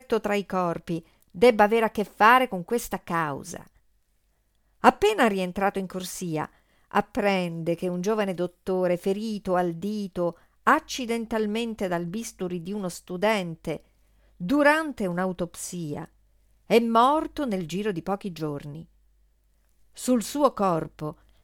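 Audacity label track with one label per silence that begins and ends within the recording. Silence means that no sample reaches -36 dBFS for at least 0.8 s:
3.620000	4.840000	silence
18.820000	19.970000	silence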